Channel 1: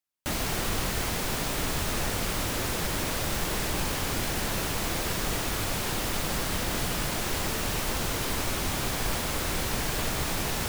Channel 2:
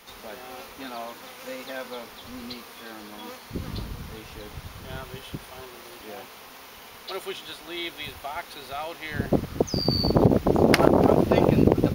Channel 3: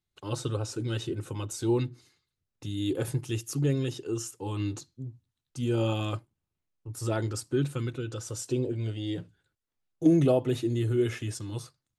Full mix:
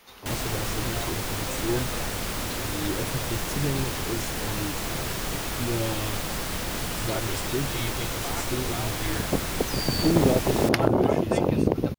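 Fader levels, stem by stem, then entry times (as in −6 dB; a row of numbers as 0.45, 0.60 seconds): −1.0, −4.0, −2.0 decibels; 0.00, 0.00, 0.00 seconds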